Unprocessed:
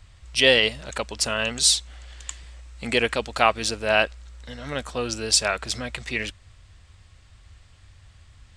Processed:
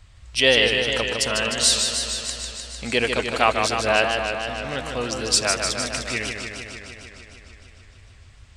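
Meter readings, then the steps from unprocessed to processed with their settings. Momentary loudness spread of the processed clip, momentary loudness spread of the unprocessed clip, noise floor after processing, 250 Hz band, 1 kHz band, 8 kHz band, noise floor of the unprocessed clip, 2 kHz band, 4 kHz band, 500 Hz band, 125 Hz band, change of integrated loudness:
14 LU, 19 LU, −48 dBFS, +2.0 dB, +2.5 dB, +2.0 dB, −53 dBFS, +2.0 dB, +2.0 dB, +2.0 dB, +2.0 dB, +1.0 dB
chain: feedback echo with a swinging delay time 152 ms, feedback 75%, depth 118 cents, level −5.5 dB

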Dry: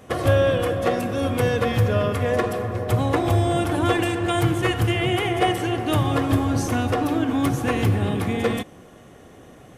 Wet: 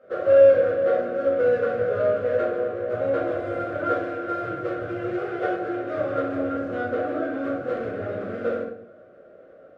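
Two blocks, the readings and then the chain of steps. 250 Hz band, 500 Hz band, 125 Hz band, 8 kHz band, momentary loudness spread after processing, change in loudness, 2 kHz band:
−8.0 dB, +3.0 dB, −18.0 dB, below −25 dB, 10 LU, −2.0 dB, −5.0 dB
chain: running median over 25 samples
pair of resonant band-passes 910 Hz, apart 1.3 octaves
rectangular room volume 87 cubic metres, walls mixed, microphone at 2.1 metres

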